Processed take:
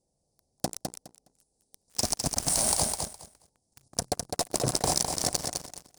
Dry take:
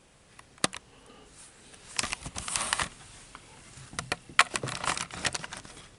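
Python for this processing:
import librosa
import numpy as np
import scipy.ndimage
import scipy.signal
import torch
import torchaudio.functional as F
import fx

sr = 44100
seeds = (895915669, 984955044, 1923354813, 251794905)

p1 = fx.hum_notches(x, sr, base_hz=60, count=7)
p2 = (np.mod(10.0 ** (5.0 / 20.0) * p1 + 1.0, 2.0) - 1.0) / 10.0 ** (5.0 / 20.0)
p3 = scipy.signal.sosfilt(scipy.signal.cheby1(3, 1.0, [760.0, 4900.0], 'bandstop', fs=sr, output='sos'), p2)
p4 = fx.leveller(p3, sr, passes=5)
p5 = fx.hpss(p4, sr, part='percussive', gain_db=-3)
p6 = fx.cheby_harmonics(p5, sr, harmonics=(7,), levels_db=(-30,), full_scale_db=-9.0)
p7 = fx.level_steps(p6, sr, step_db=13)
y = p7 + fx.echo_feedback(p7, sr, ms=207, feedback_pct=18, wet_db=-5.0, dry=0)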